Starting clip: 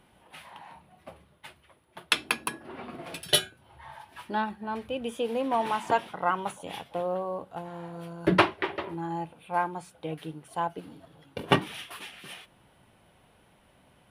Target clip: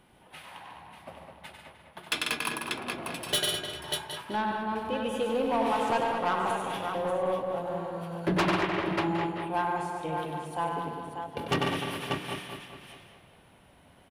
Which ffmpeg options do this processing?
-filter_complex "[0:a]asplit=2[s0][s1];[s1]aecho=0:1:96|144|196|590|764:0.501|0.398|0.15|0.398|0.106[s2];[s0][s2]amix=inputs=2:normalize=0,asoftclip=type=tanh:threshold=0.0891,asplit=2[s3][s4];[s4]adelay=207,lowpass=f=3200:p=1,volume=0.501,asplit=2[s5][s6];[s6]adelay=207,lowpass=f=3200:p=1,volume=0.52,asplit=2[s7][s8];[s8]adelay=207,lowpass=f=3200:p=1,volume=0.52,asplit=2[s9][s10];[s10]adelay=207,lowpass=f=3200:p=1,volume=0.52,asplit=2[s11][s12];[s12]adelay=207,lowpass=f=3200:p=1,volume=0.52,asplit=2[s13][s14];[s14]adelay=207,lowpass=f=3200:p=1,volume=0.52[s15];[s5][s7][s9][s11][s13][s15]amix=inputs=6:normalize=0[s16];[s3][s16]amix=inputs=2:normalize=0"

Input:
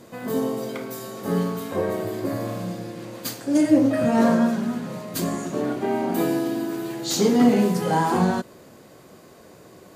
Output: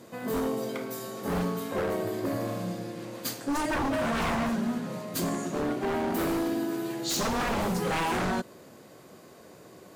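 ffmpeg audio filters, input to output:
-af "highpass=f=88:p=1,aeval=exprs='0.0944*(abs(mod(val(0)/0.0944+3,4)-2)-1)':c=same,volume=0.75"

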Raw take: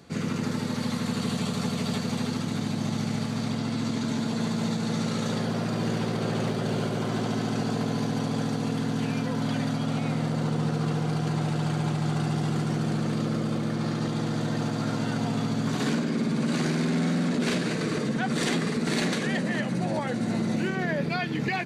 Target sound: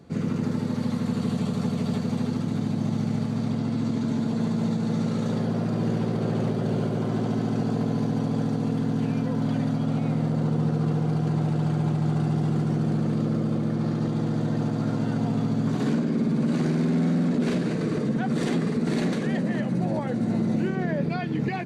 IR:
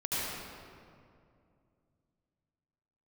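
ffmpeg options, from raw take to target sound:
-af "tiltshelf=f=970:g=6,volume=0.75"

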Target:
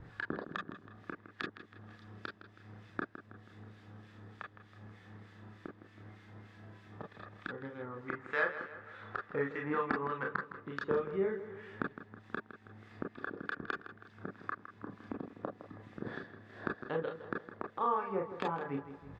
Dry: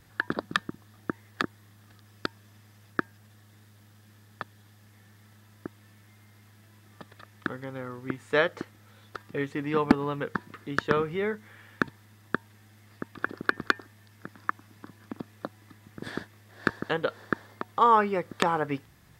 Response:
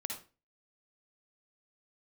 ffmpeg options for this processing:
-filter_complex "[0:a]asettb=1/sr,asplit=3[s0][s1][s2];[s0]atrim=end=8.084[s3];[s1]atrim=start=8.08:end=10.36,asetpts=PTS-STARTPTS,afade=t=in:d=0.004:c=qsin,afade=t=out:st=2.276:d=0.004:c=qsin,equalizer=f=1400:t=o:w=1.7:g=13.5[s4];[s2]atrim=start=10.356[s5];[s3][s4]acrossfade=d=0.004:c1=hsin:c2=qsin[s6];[s6][s5]acrossfade=d=0.004:c1=qsin:c2=hsin,acompressor=threshold=0.00251:ratio=2,acrossover=split=1500[s7][s8];[s7]aeval=exprs='val(0)*(1-0.7/2+0.7/2*cos(2*PI*3.3*n/s))':c=same[s9];[s8]aeval=exprs='val(0)*(1-0.7/2-0.7/2*cos(2*PI*3.3*n/s))':c=same[s10];[s9][s10]amix=inputs=2:normalize=0,adynamicsmooth=sensitivity=1:basefreq=2400,asplit=2[s11][s12];[s12]adelay=161,lowpass=f=3800:p=1,volume=0.251,asplit=2[s13][s14];[s14]adelay=161,lowpass=f=3800:p=1,volume=0.51,asplit=2[s15][s16];[s16]adelay=161,lowpass=f=3800:p=1,volume=0.51,asplit=2[s17][s18];[s18]adelay=161,lowpass=f=3800:p=1,volume=0.51,asplit=2[s19][s20];[s20]adelay=161,lowpass=f=3800:p=1,volume=0.51[s21];[s11][s13][s15][s17][s19][s21]amix=inputs=6:normalize=0[s22];[1:a]atrim=start_sample=2205,atrim=end_sample=4410,asetrate=83790,aresample=44100[s23];[s22][s23]afir=irnorm=-1:irlink=0,volume=5.96"

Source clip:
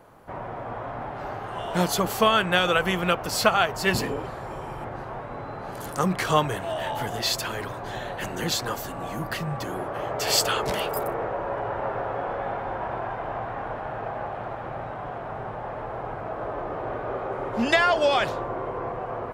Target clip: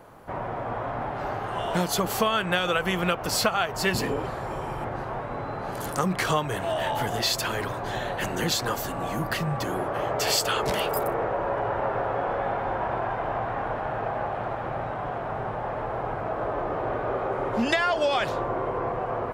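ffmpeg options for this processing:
-af "acompressor=threshold=0.0562:ratio=3,volume=1.41"

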